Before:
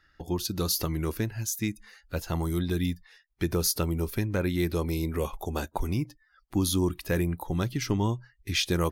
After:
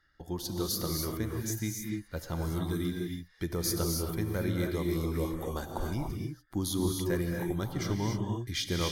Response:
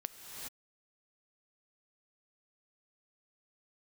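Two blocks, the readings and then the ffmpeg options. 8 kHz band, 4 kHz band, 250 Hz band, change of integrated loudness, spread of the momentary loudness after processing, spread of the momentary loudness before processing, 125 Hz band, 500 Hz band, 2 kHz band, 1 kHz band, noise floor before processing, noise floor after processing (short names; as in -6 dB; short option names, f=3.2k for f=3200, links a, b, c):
-3.5 dB, -4.0 dB, -3.0 dB, -3.5 dB, 7 LU, 7 LU, -3.5 dB, -3.0 dB, -5.0 dB, -4.0 dB, -66 dBFS, -61 dBFS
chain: -filter_complex "[0:a]asuperstop=centerf=2600:order=4:qfactor=6.4[a];[1:a]atrim=start_sample=2205,asetrate=61740,aresample=44100[b];[a][b]afir=irnorm=-1:irlink=0"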